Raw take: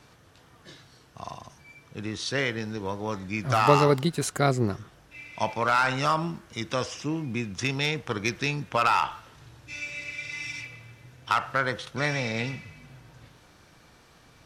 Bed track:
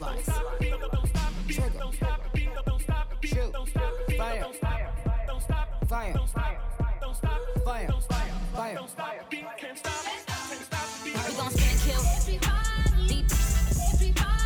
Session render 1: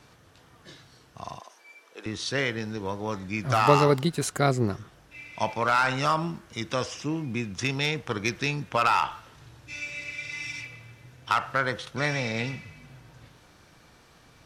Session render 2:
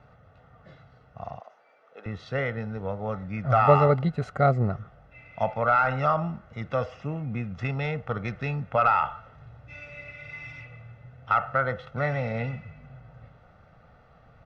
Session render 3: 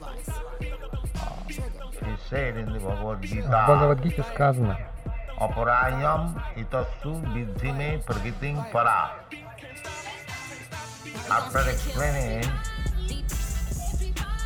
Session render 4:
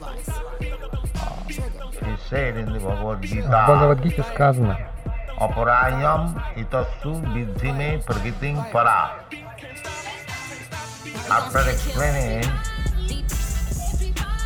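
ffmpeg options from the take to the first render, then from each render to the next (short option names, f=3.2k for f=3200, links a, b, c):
-filter_complex "[0:a]asettb=1/sr,asplit=3[a][b][c];[a]atrim=end=1.404[d];[b]atrim=start=1.4:end=2.06,asetpts=PTS-STARTPTS,afade=t=in:d=0.004:c=qsin,afade=t=out:st=0.656:d=0.004:c=qsin,highpass=f=380:w=0.5412,highpass=f=380:w=1.3066[e];[c]atrim=start=2.056[f];[d][e]acrossfade=d=0.004:c1=hsin:c2=qsin[g];[g][f]acrossfade=d=0.004:c1=qsin:c2=hsin"
-af "lowpass=1.5k,aecho=1:1:1.5:0.73"
-filter_complex "[1:a]volume=-5dB[a];[0:a][a]amix=inputs=2:normalize=0"
-af "volume=4.5dB,alimiter=limit=-2dB:level=0:latency=1"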